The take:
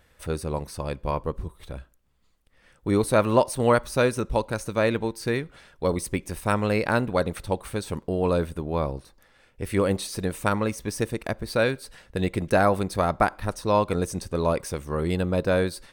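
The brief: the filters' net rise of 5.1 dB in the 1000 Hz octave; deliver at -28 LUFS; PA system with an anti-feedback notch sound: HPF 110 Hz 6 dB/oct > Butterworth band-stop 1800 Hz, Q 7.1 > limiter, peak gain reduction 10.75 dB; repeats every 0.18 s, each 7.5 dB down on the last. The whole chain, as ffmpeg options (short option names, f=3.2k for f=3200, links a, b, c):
-af "highpass=f=110:p=1,asuperstop=centerf=1800:order=8:qfactor=7.1,equalizer=f=1k:t=o:g=6.5,aecho=1:1:180|360|540|720|900:0.422|0.177|0.0744|0.0312|0.0131,volume=-1.5dB,alimiter=limit=-15.5dB:level=0:latency=1"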